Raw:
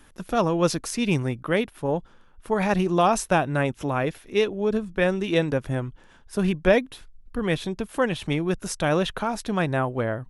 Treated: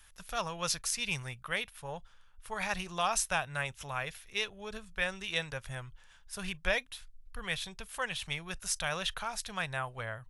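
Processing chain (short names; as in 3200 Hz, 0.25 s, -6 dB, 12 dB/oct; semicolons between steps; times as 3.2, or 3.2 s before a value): passive tone stack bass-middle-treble 10-0-10; reverb, pre-delay 27 ms, DRR 29 dB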